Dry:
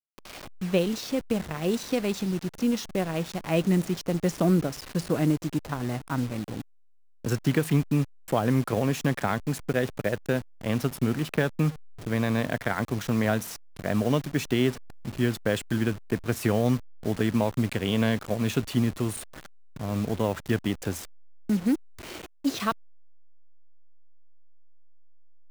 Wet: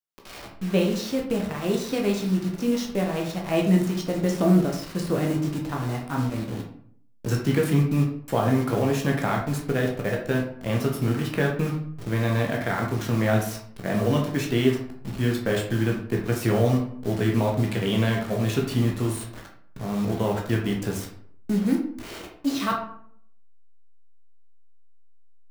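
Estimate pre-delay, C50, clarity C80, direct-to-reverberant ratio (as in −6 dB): 11 ms, 6.0 dB, 10.0 dB, −0.5 dB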